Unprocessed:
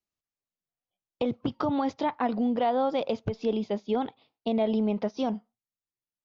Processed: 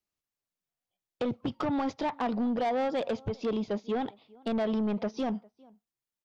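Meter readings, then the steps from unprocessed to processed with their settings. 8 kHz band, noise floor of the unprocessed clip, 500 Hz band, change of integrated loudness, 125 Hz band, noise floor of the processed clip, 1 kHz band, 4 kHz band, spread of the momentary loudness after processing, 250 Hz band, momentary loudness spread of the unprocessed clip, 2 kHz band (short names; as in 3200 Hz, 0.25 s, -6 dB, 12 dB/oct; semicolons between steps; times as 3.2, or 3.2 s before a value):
n/a, under -85 dBFS, -3.0 dB, -2.5 dB, -2.0 dB, under -85 dBFS, -3.5 dB, -2.5 dB, 6 LU, -2.5 dB, 6 LU, +0.5 dB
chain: outdoor echo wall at 69 m, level -29 dB; soft clip -25.5 dBFS, distortion -12 dB; gain +1 dB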